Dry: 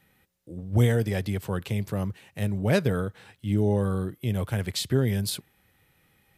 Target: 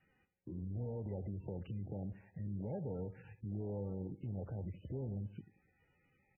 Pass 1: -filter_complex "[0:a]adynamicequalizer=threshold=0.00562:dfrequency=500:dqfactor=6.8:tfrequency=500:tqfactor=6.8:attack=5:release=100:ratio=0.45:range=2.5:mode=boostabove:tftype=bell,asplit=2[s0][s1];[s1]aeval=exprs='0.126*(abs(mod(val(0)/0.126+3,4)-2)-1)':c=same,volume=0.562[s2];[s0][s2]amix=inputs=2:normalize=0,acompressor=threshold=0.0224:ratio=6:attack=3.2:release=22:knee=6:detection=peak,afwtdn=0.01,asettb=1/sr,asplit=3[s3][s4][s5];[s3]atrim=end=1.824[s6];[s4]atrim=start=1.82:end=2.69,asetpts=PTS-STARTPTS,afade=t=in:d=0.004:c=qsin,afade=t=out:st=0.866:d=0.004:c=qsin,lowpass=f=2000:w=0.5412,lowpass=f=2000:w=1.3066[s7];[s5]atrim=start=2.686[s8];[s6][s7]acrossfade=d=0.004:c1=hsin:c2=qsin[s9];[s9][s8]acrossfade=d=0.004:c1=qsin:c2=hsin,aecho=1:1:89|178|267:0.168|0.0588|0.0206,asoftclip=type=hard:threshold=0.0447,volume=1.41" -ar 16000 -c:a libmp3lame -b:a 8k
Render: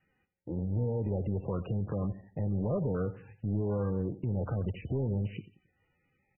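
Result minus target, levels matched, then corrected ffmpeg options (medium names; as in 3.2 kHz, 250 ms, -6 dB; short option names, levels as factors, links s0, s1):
compression: peak gain reduction -10 dB
-filter_complex "[0:a]adynamicequalizer=threshold=0.00562:dfrequency=500:dqfactor=6.8:tfrequency=500:tqfactor=6.8:attack=5:release=100:ratio=0.45:range=2.5:mode=boostabove:tftype=bell,asplit=2[s0][s1];[s1]aeval=exprs='0.126*(abs(mod(val(0)/0.126+3,4)-2)-1)':c=same,volume=0.562[s2];[s0][s2]amix=inputs=2:normalize=0,acompressor=threshold=0.00562:ratio=6:attack=3.2:release=22:knee=6:detection=peak,afwtdn=0.01,asettb=1/sr,asplit=3[s3][s4][s5];[s3]atrim=end=1.824[s6];[s4]atrim=start=1.82:end=2.69,asetpts=PTS-STARTPTS,afade=t=in:d=0.004:c=qsin,afade=t=out:st=0.866:d=0.004:c=qsin,lowpass=f=2000:w=0.5412,lowpass=f=2000:w=1.3066[s7];[s5]atrim=start=2.686[s8];[s6][s7]acrossfade=d=0.004:c1=hsin:c2=qsin[s9];[s9][s8]acrossfade=d=0.004:c1=qsin:c2=hsin,aecho=1:1:89|178|267:0.168|0.0588|0.0206,asoftclip=type=hard:threshold=0.0447,volume=1.41" -ar 16000 -c:a libmp3lame -b:a 8k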